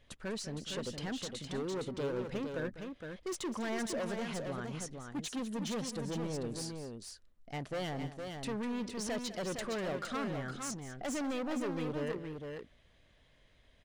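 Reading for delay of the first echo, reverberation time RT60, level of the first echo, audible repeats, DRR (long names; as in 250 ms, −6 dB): 198 ms, no reverb audible, −14.0 dB, 2, no reverb audible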